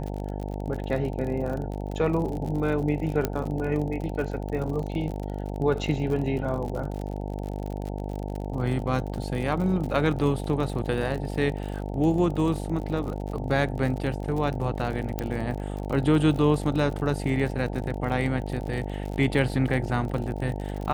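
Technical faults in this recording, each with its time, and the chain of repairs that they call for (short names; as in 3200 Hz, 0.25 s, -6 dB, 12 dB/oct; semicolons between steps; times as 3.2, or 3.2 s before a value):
buzz 50 Hz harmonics 18 -32 dBFS
crackle 47/s -32 dBFS
3.25 pop -10 dBFS
15.19 pop -14 dBFS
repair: de-click; de-hum 50 Hz, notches 18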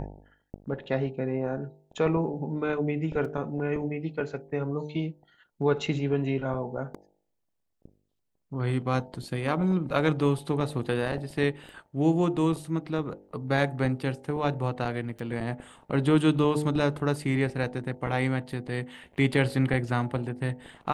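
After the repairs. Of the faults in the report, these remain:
3.25 pop
15.19 pop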